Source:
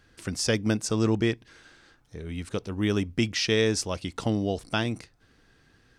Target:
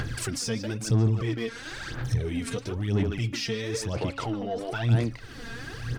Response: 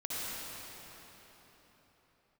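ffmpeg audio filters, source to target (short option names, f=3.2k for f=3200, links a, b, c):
-filter_complex "[0:a]asplit=2[a][b];[b]acompressor=mode=upward:threshold=-30dB:ratio=2.5,volume=1dB[c];[a][c]amix=inputs=2:normalize=0,asplit=2[d][e];[e]adelay=150,highpass=300,lowpass=3.4k,asoftclip=type=hard:threshold=-13.5dB,volume=-7dB[f];[d][f]amix=inputs=2:normalize=0,asettb=1/sr,asplit=3[g][h][i];[g]atrim=end=3.934[j];[h]atrim=start=3.93:end=4.9,asetpts=PTS-STARTPTS,afade=t=in:d=0.004:c=qsin,afade=t=out:st=0.966:d=0.004:c=qsin,asplit=2[k][l];[l]highpass=f=720:p=1,volume=13dB,asoftclip=type=tanh:threshold=-5.5dB[m];[k][m]amix=inputs=2:normalize=0,lowpass=f=1.4k:p=1,volume=-6dB[n];[i]atrim=start=4.896[o];[j][n]acrossfade=d=0.004:c1=hsin:c2=qsin[p];[p][o]acrossfade=d=0.004:c1=qsin:c2=hsin,acompressor=threshold=-26dB:ratio=4,alimiter=level_in=1.5dB:limit=-24dB:level=0:latency=1:release=17,volume=-1.5dB,aphaser=in_gain=1:out_gain=1:delay=4.4:decay=0.67:speed=1:type=sinusoidal,asoftclip=type=tanh:threshold=-21dB,equalizer=f=120:w=4.7:g=13.5,bandreject=f=276.1:t=h:w=4,bandreject=f=552.2:t=h:w=4,bandreject=f=828.3:t=h:w=4,bandreject=f=1.1044k:t=h:w=4,bandreject=f=1.3805k:t=h:w=4,bandreject=f=1.6566k:t=h:w=4,bandreject=f=1.9327k:t=h:w=4,bandreject=f=2.2088k:t=h:w=4,bandreject=f=2.4849k:t=h:w=4,bandreject=f=2.761k:t=h:w=4,bandreject=f=3.0371k:t=h:w=4,bandreject=f=3.3132k:t=h:w=4,bandreject=f=3.5893k:t=h:w=4,bandreject=f=3.8654k:t=h:w=4,volume=1dB"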